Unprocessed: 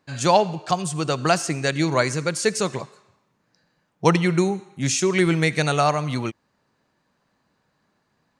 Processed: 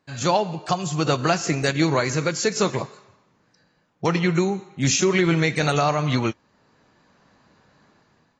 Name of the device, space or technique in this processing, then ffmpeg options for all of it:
low-bitrate web radio: -filter_complex "[0:a]asettb=1/sr,asplit=3[a][b][c];[a]atrim=end=4.694[d];[b]atrim=start=4.69:end=5.18,asetpts=PTS-STARTPTS,afade=t=in:d=0.004:c=qsin,afade=t=out:st=0.486:d=0.004:c=qsin,lowpass=8k[e];[c]atrim=start=5.176[f];[d][e]acrossfade=d=0.004:c1=hsin:c2=qsin[g];[g][f]acrossfade=d=0.004:c1=qsin:c2=hsin,dynaudnorm=f=260:g=5:m=11.5dB,alimiter=limit=-8dB:level=0:latency=1:release=195,volume=-2dB" -ar 24000 -c:a aac -b:a 24k

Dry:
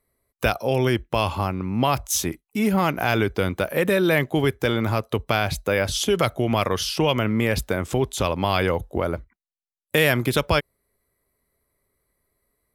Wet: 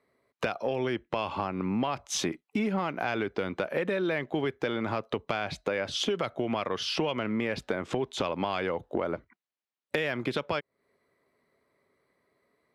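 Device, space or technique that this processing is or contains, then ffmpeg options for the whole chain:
AM radio: -af "highpass=190,lowpass=3.7k,acompressor=threshold=-31dB:ratio=10,asoftclip=type=tanh:threshold=-19dB,volume=5.5dB"

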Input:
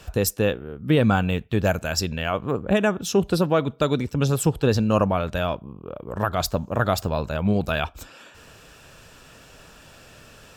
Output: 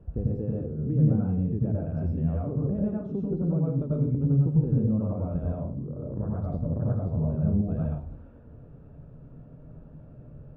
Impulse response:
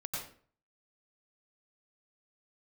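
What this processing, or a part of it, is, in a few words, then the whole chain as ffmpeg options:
television next door: -filter_complex "[0:a]acompressor=threshold=-28dB:ratio=3,lowpass=310[a];[1:a]atrim=start_sample=2205[b];[a][b]afir=irnorm=-1:irlink=0,volume=4dB"

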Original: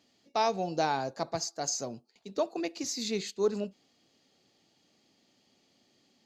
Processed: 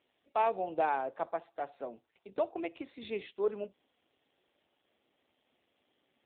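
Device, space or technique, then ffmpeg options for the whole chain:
telephone: -af "highpass=380,lowpass=3.5k" -ar 8000 -c:a libopencore_amrnb -b:a 7400

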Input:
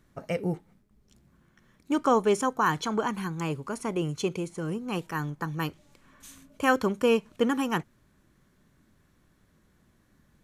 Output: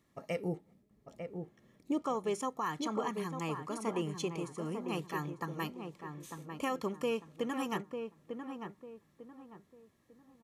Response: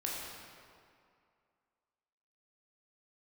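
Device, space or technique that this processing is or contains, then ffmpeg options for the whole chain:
PA system with an anti-feedback notch: -filter_complex "[0:a]asettb=1/sr,asplit=3[a][b][c];[a]atrim=end=0.484[d];[b]atrim=start=0.48:end=2.02,asetpts=PTS-STARTPTS,afade=t=in:d=0.004:c=qsin,afade=t=out:st=1.536:d=0.004:c=qsin,lowshelf=f=770:t=q:w=1.5:g=6[e];[c]atrim=start=2.016[f];[d][e]acrossfade=d=0.004:c1=hsin:c2=qsin[g];[g][f]acrossfade=d=0.004:c1=qsin:c2=hsin,highpass=f=180:p=1,asuperstop=centerf=1500:order=20:qfactor=7.5,alimiter=limit=-20dB:level=0:latency=1:release=326,asplit=2[h][i];[i]adelay=898,lowpass=f=1.4k:p=1,volume=-6dB,asplit=2[j][k];[k]adelay=898,lowpass=f=1.4k:p=1,volume=0.34,asplit=2[l][m];[m]adelay=898,lowpass=f=1.4k:p=1,volume=0.34,asplit=2[n][o];[o]adelay=898,lowpass=f=1.4k:p=1,volume=0.34[p];[h][j][l][n][p]amix=inputs=5:normalize=0,volume=-5dB"

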